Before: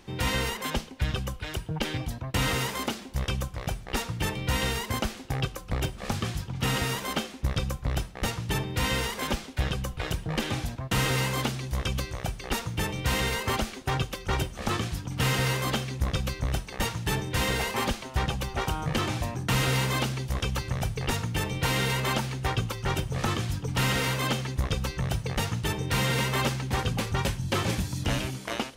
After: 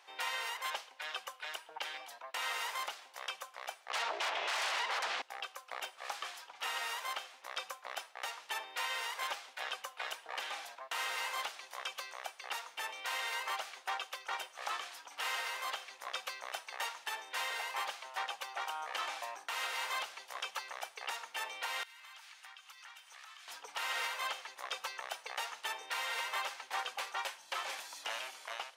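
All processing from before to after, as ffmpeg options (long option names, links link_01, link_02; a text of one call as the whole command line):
ffmpeg -i in.wav -filter_complex "[0:a]asettb=1/sr,asplit=3[link_01][link_02][link_03];[link_01]atrim=end=3.904[link_04];[link_02]atrim=start=3.9:end=5.22,asetpts=PTS-STARTPTS,afade=type=in:duration=0.004:curve=qsin,afade=type=out:start_time=1.316:duration=0.004:curve=qsin,lowpass=4300,equalizer=frequency=140:width_type=o:width=1.4:gain=10,aeval=exprs='0.299*sin(PI/2*8.91*val(0)/0.299)':channel_layout=same[link_05];[link_03]atrim=start=5.216[link_06];[link_04][link_05]acrossfade=duration=0.004:curve1=hsin:curve2=qsin[link_07];[link_07][link_06]acrossfade=duration=0.004:curve1=qsin:curve2=hsin,asettb=1/sr,asplit=3[link_08][link_09][link_10];[link_08]atrim=end=21.834[link_11];[link_09]atrim=start=21.83:end=23.48,asetpts=PTS-STARTPTS,afade=type=in:duration=0.004:curve=qsin,afade=type=out:start_time=1.646:duration=0.004:curve=qsin,highpass=1400,acompressor=threshold=-45dB:ratio=12:attack=3.2:release=140:knee=1:detection=peak[link_12];[link_10]atrim=start=23.476[link_13];[link_11][link_12]acrossfade=duration=0.004:curve1=hsin:curve2=qsin[link_14];[link_14][link_13]acrossfade=duration=0.004:curve1=qsin:curve2=hsin,highpass=frequency=700:width=0.5412,highpass=frequency=700:width=1.3066,highshelf=frequency=4600:gain=-7,alimiter=limit=-24dB:level=0:latency=1:release=407,volume=-2.5dB" out.wav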